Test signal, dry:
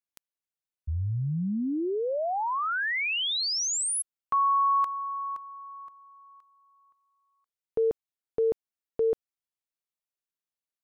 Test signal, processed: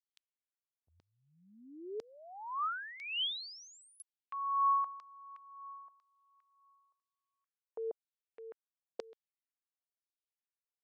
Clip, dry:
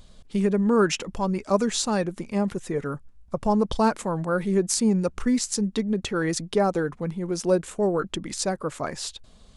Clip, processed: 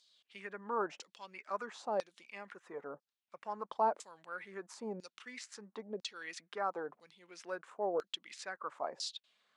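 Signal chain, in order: LFO band-pass saw down 1 Hz 550–5100 Hz; Bessel high-pass 220 Hz, order 2; gain -4 dB

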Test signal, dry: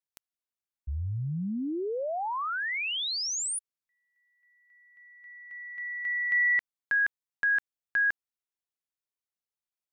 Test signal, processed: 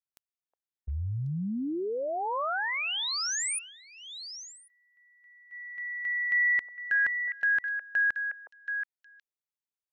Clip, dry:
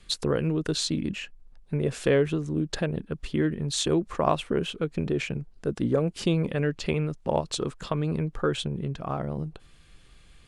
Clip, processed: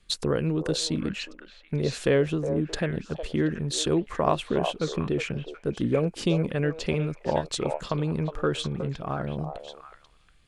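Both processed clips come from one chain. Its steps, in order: gate -44 dBFS, range -8 dB; delay with a stepping band-pass 0.364 s, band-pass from 660 Hz, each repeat 1.4 oct, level -4 dB

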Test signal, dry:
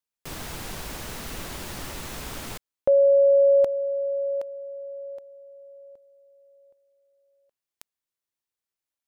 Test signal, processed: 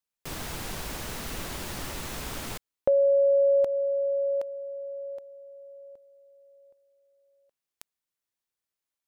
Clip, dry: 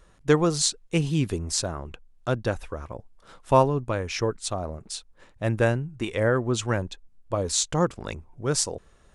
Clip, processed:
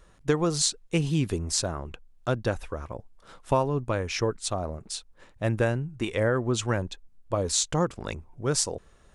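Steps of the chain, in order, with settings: compressor, threshold -19 dBFS

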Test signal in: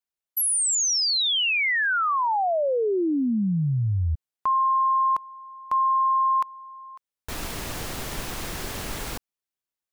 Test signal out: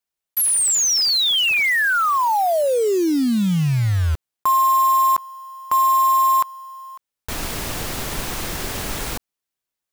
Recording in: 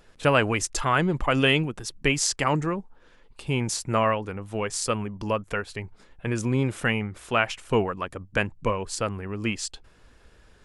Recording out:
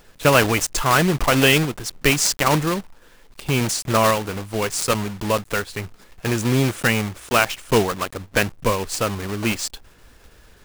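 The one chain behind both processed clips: block floating point 3-bit; gain +5 dB

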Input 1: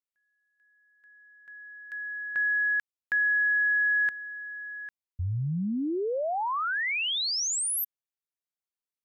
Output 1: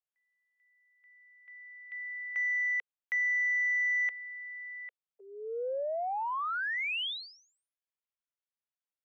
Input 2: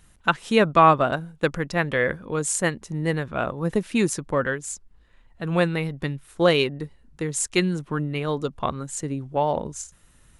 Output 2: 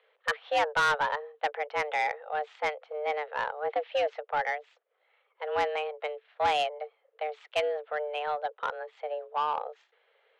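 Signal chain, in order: mistuned SSB +300 Hz 160–3200 Hz; soft clip -16 dBFS; gain -4 dB

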